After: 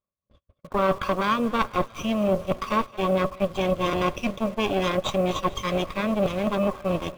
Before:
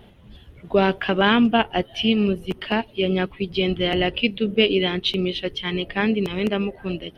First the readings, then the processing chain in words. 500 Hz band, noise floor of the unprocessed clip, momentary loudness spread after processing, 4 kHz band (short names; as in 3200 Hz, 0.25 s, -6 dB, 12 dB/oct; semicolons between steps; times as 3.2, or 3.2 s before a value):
-2.0 dB, -49 dBFS, 3 LU, -10.0 dB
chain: minimum comb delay 0.84 ms; gate -40 dBFS, range -46 dB; high shelf 4500 Hz -9.5 dB; reverse; compressor 6:1, threshold -28 dBFS, peak gain reduction 13.5 dB; reverse; small resonant body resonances 570/1100 Hz, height 18 dB, ringing for 40 ms; in parallel at -7.5 dB: bit-crush 7-bit; on the sum: thinning echo 0.22 s, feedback 65%, high-pass 420 Hz, level -20 dB